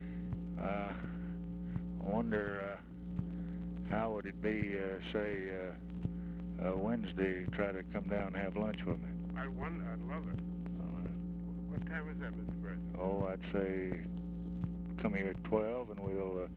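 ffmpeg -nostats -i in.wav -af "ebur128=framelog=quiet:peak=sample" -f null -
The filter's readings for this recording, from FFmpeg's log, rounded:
Integrated loudness:
  I:         -39.8 LUFS
  Threshold: -49.8 LUFS
Loudness range:
  LRA:         3.1 LU
  Threshold: -59.9 LUFS
  LRA low:   -41.7 LUFS
  LRA high:  -38.7 LUFS
Sample peak:
  Peak:      -18.6 dBFS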